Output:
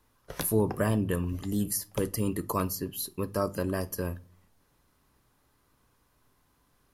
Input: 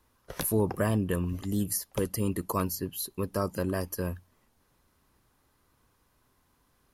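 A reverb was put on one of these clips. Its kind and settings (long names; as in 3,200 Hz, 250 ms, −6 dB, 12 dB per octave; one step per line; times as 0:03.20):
rectangular room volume 210 cubic metres, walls furnished, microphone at 0.34 metres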